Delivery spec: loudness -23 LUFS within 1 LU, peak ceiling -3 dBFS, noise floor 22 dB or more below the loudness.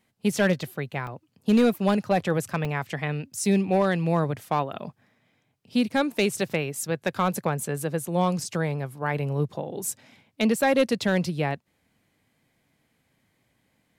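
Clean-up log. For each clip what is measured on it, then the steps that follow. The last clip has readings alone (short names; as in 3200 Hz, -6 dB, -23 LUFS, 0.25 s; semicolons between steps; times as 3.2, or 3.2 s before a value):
clipped 0.3%; flat tops at -13.5 dBFS; dropouts 2; longest dropout 1.9 ms; loudness -26.0 LUFS; peak -13.5 dBFS; loudness target -23.0 LUFS
-> clip repair -13.5 dBFS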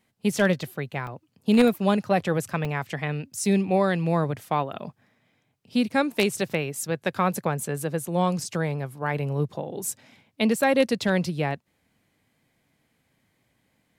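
clipped 0.0%; dropouts 2; longest dropout 1.9 ms
-> interpolate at 1.07/2.65, 1.9 ms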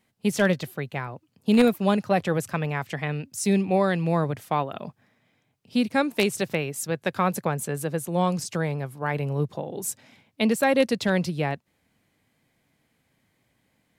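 dropouts 0; loudness -25.5 LUFS; peak -4.5 dBFS; loudness target -23.0 LUFS
-> gain +2.5 dB; limiter -3 dBFS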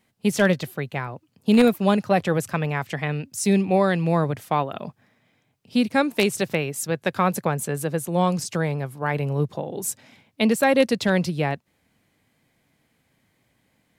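loudness -23.0 LUFS; peak -3.0 dBFS; noise floor -69 dBFS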